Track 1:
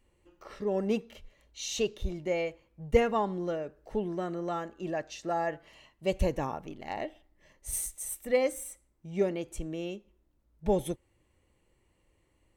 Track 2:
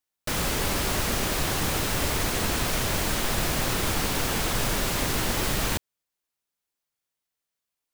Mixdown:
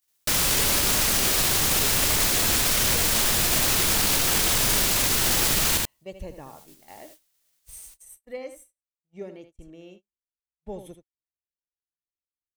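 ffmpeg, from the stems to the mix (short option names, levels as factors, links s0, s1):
-filter_complex "[0:a]volume=0.316,asplit=2[s0][s1];[s1]volume=0.316[s2];[1:a]highshelf=f=2500:g=11,acompressor=mode=upward:threshold=0.0158:ratio=2.5,volume=1.26,asplit=2[s3][s4];[s4]volume=0.447[s5];[s2][s5]amix=inputs=2:normalize=0,aecho=0:1:79:1[s6];[s0][s3][s6]amix=inputs=3:normalize=0,agate=range=0.0251:threshold=0.00398:ratio=16:detection=peak,alimiter=limit=0.237:level=0:latency=1:release=14"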